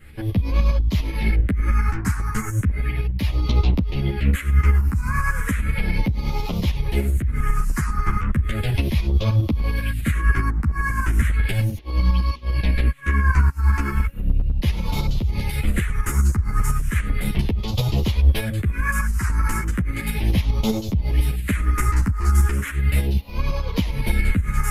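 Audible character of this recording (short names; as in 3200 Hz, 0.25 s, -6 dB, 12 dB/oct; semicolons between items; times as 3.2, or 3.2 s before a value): phasing stages 4, 0.35 Hz, lowest notch 570–1600 Hz; tremolo saw up 10 Hz, depth 60%; a shimmering, thickened sound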